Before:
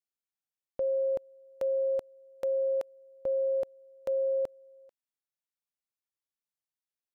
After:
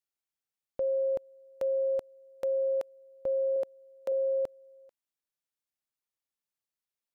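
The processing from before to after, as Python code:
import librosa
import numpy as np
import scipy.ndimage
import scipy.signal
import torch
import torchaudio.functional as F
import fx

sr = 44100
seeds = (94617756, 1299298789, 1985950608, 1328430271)

y = fx.highpass(x, sr, hz=210.0, slope=12, at=(3.56, 4.12))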